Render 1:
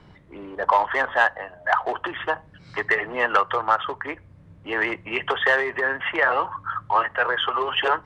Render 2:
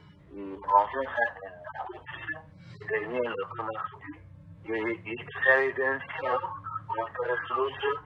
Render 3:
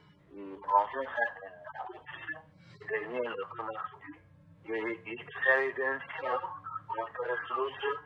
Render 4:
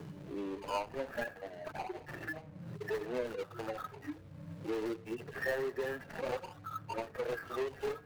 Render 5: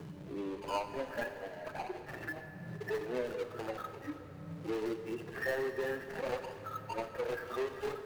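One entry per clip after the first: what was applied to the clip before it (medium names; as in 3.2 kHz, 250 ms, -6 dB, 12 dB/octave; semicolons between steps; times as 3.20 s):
harmonic-percussive separation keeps harmonic
peaking EQ 60 Hz -9 dB 2.5 oct; feedback comb 150 Hz, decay 0.84 s, harmonics odd, mix 50%; trim +2 dB
median filter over 41 samples; three bands compressed up and down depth 70%; trim +1 dB
plate-style reverb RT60 3.7 s, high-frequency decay 0.85×, DRR 8 dB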